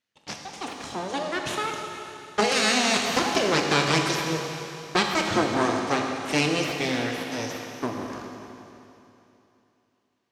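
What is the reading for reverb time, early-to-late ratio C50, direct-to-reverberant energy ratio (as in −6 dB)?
3.0 s, 2.5 dB, 1.5 dB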